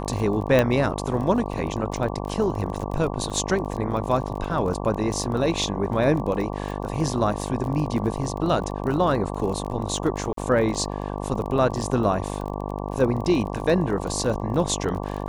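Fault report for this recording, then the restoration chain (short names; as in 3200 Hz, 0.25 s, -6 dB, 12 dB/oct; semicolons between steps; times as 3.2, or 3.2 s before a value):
buzz 50 Hz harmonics 23 -30 dBFS
crackle 26/s -30 dBFS
0.59 pop -7 dBFS
3.3 gap 4.3 ms
10.33–10.37 gap 43 ms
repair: de-click; de-hum 50 Hz, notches 23; interpolate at 3.3, 4.3 ms; interpolate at 10.33, 43 ms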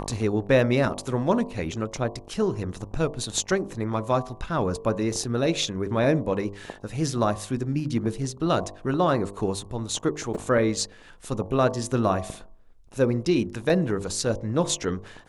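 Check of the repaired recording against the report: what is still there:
0.59 pop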